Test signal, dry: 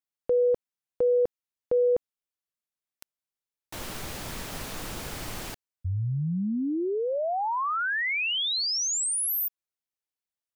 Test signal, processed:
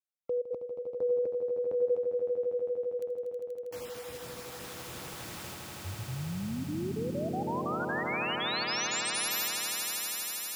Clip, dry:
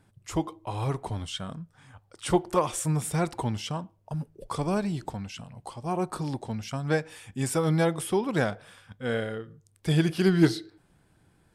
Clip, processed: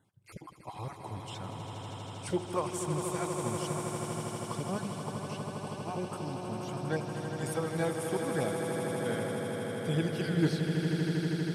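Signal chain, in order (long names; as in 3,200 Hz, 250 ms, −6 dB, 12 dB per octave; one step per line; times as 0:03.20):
time-frequency cells dropped at random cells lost 20%
high-pass filter 86 Hz
echo that builds up and dies away 80 ms, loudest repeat 8, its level −8.5 dB
level −8 dB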